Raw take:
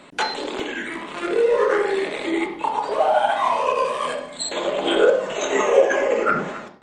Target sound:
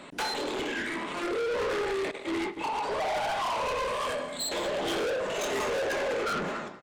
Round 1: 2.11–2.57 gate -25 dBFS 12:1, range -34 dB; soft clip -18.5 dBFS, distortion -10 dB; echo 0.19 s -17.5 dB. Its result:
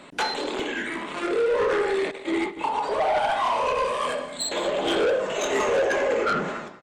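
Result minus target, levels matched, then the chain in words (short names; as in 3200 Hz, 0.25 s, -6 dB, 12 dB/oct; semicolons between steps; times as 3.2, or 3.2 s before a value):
soft clip: distortion -5 dB
2.11–2.57 gate -25 dBFS 12:1, range -34 dB; soft clip -28 dBFS, distortion -4 dB; echo 0.19 s -17.5 dB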